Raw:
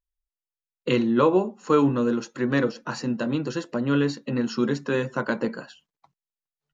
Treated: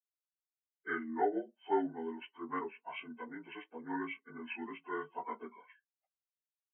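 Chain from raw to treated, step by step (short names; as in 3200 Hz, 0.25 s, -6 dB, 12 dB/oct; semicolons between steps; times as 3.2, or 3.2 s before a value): inharmonic rescaling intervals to 76%; band-pass 2500 Hz, Q 0.78; spectral expander 1.5:1; gain +1 dB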